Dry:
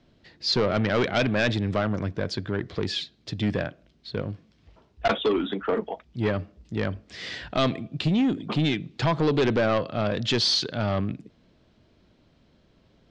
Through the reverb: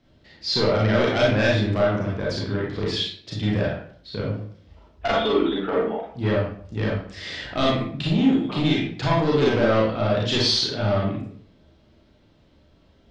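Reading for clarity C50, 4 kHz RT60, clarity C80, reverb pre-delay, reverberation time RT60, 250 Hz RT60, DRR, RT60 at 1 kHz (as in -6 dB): 1.0 dB, 0.40 s, 6.0 dB, 29 ms, 0.55 s, 0.60 s, -5.0 dB, 0.55 s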